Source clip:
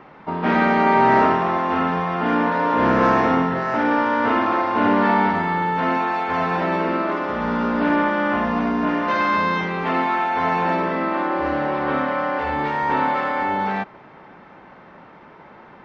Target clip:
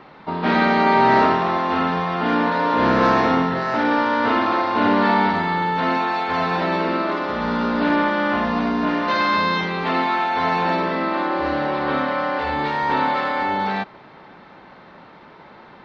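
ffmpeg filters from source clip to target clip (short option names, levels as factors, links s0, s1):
-af "equalizer=f=4100:w=2.2:g=11"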